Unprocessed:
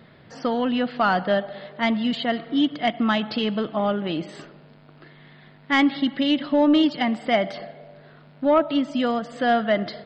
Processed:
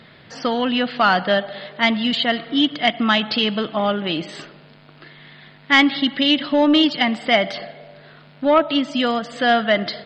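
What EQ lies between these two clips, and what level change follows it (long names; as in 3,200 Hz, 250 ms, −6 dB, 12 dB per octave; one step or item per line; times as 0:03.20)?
parametric band 3,700 Hz +8.5 dB 2.7 octaves
+1.5 dB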